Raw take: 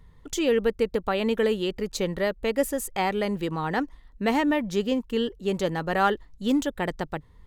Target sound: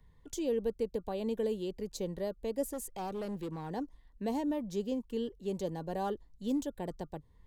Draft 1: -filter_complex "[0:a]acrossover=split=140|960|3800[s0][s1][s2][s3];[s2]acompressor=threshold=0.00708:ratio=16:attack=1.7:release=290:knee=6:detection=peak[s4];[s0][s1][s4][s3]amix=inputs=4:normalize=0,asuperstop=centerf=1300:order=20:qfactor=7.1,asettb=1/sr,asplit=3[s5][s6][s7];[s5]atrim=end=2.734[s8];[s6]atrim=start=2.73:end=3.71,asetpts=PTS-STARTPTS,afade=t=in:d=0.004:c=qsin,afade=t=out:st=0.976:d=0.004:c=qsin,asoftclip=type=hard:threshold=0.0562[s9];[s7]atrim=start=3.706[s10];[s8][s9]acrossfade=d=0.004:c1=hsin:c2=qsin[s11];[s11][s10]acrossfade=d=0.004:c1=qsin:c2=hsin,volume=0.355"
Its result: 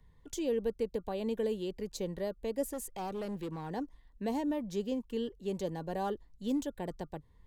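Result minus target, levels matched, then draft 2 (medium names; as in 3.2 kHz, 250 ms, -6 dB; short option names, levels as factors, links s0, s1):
compression: peak gain reduction -5.5 dB
-filter_complex "[0:a]acrossover=split=140|960|3800[s0][s1][s2][s3];[s2]acompressor=threshold=0.00355:ratio=16:attack=1.7:release=290:knee=6:detection=peak[s4];[s0][s1][s4][s3]amix=inputs=4:normalize=0,asuperstop=centerf=1300:order=20:qfactor=7.1,asettb=1/sr,asplit=3[s5][s6][s7];[s5]atrim=end=2.734[s8];[s6]atrim=start=2.73:end=3.71,asetpts=PTS-STARTPTS,afade=t=in:d=0.004:c=qsin,afade=t=out:st=0.976:d=0.004:c=qsin,asoftclip=type=hard:threshold=0.0562[s9];[s7]atrim=start=3.706[s10];[s8][s9]acrossfade=d=0.004:c1=hsin:c2=qsin[s11];[s11][s10]acrossfade=d=0.004:c1=qsin:c2=hsin,volume=0.355"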